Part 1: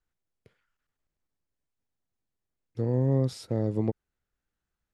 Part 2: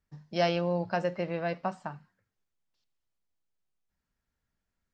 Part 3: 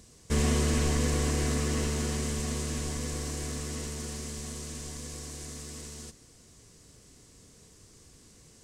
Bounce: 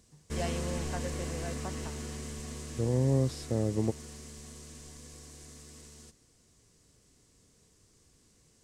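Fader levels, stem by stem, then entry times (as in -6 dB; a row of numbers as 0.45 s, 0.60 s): -2.0 dB, -10.5 dB, -9.0 dB; 0.00 s, 0.00 s, 0.00 s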